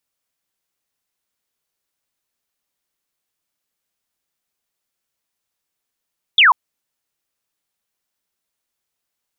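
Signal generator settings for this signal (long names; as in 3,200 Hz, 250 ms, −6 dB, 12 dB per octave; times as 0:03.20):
single falling chirp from 3,700 Hz, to 900 Hz, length 0.14 s sine, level −7 dB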